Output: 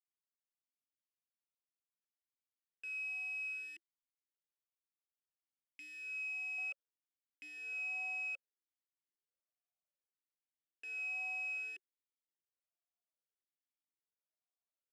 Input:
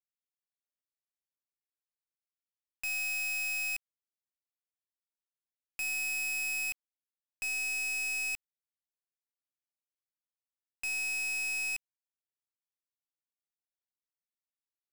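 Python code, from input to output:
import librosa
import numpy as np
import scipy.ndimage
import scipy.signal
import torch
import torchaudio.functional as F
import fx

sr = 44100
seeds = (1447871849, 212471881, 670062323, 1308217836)

y = fx.peak_eq(x, sr, hz=660.0, db=fx.steps((0.0, -10.0), (6.58, 5.0)), octaves=1.2)
y = fx.vowel_sweep(y, sr, vowels='a-i', hz=0.62)
y = y * librosa.db_to_amplitude(3.0)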